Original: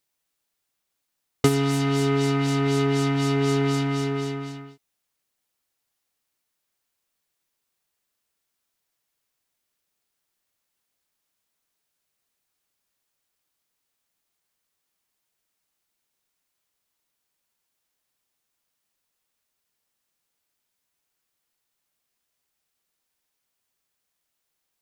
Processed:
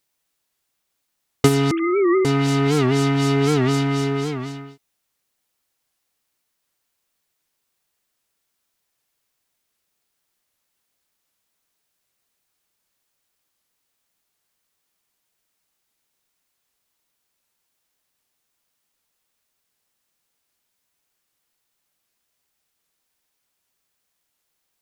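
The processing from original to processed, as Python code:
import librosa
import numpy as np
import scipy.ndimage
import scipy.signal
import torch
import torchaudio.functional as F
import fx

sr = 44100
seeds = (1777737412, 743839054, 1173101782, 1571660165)

y = fx.sine_speech(x, sr, at=(1.71, 2.25))
y = fx.record_warp(y, sr, rpm=78.0, depth_cents=160.0)
y = y * librosa.db_to_amplitude(4.0)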